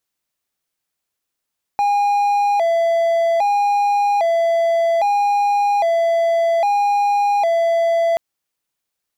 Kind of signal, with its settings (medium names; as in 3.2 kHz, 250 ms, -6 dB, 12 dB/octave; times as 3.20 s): siren hi-lo 670–815 Hz 0.62 per s triangle -11.5 dBFS 6.38 s